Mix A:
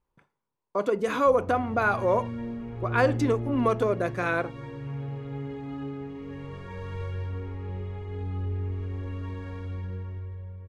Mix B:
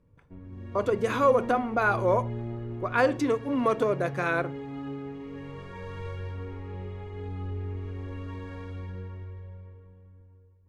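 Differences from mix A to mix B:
background: entry -0.95 s; master: add bell 76 Hz -4 dB 2.4 oct

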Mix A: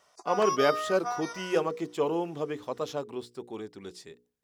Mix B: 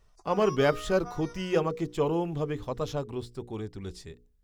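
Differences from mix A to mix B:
background -10.0 dB; master: remove HPF 260 Hz 12 dB/oct

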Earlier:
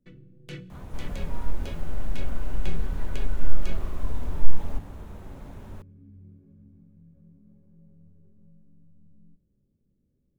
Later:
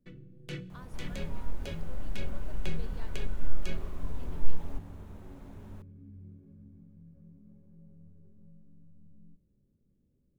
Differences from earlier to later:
speech +5.0 dB; second sound -7.0 dB

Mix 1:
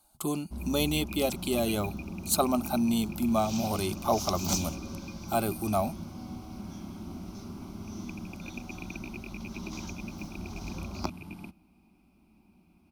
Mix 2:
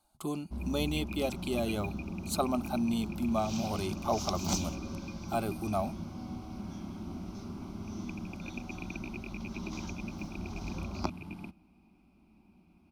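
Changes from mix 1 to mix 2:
speech -4.0 dB; master: add high shelf 7700 Hz -11 dB

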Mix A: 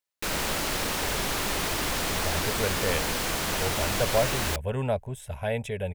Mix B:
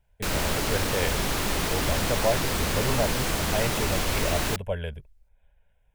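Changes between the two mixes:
speech: entry -1.90 s; background: add low shelf 320 Hz +6 dB

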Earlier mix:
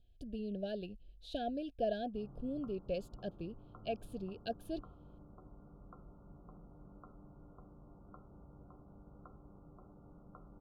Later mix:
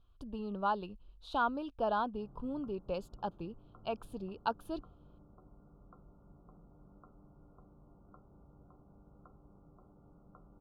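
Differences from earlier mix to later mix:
speech: remove Chebyshev band-stop 730–1600 Hz, order 5; reverb: off

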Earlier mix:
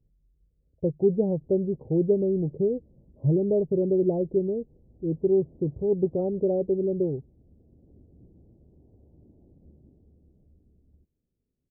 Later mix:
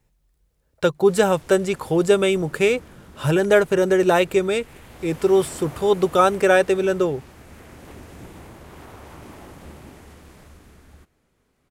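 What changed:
background +11.0 dB; master: remove Gaussian blur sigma 20 samples

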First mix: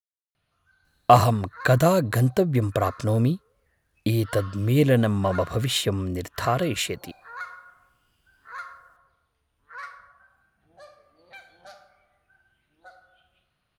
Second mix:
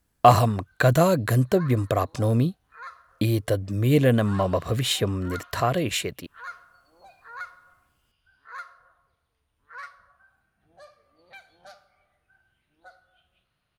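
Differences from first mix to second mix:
speech: entry -0.85 s; background: send -9.5 dB

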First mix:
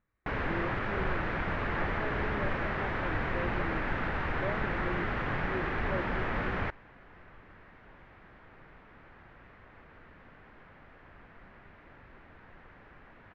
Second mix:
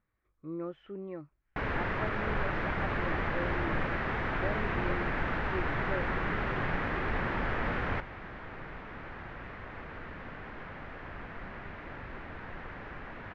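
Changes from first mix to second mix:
first sound: entry +1.30 s; second sound +11.0 dB

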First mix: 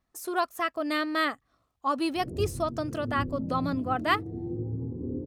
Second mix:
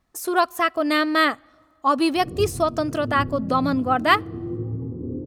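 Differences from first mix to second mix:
speech +7.5 dB; reverb: on, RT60 2.3 s

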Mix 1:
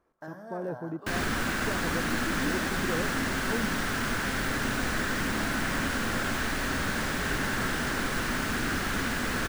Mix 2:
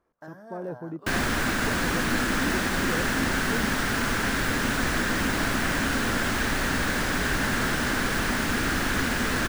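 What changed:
second sound +7.5 dB; reverb: off

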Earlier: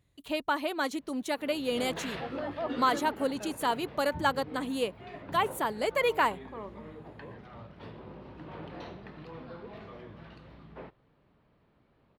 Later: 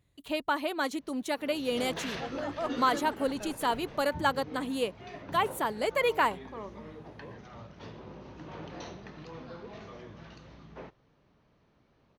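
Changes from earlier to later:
first sound: add synth low-pass 6200 Hz, resonance Q 8.4; second sound: remove Butterworth band-pass 540 Hz, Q 0.64

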